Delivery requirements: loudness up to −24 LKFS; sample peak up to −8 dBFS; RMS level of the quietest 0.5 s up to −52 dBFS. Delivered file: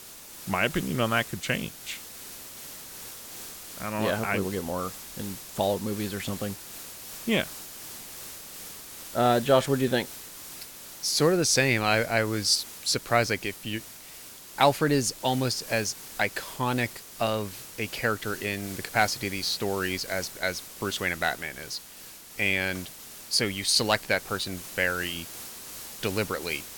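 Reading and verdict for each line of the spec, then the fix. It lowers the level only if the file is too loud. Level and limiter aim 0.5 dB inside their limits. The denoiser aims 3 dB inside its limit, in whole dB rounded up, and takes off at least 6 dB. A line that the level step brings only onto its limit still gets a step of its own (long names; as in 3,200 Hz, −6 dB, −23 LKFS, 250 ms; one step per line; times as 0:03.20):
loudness −27.5 LKFS: in spec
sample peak −6.5 dBFS: out of spec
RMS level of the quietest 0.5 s −46 dBFS: out of spec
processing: broadband denoise 9 dB, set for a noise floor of −46 dBFS
brickwall limiter −8.5 dBFS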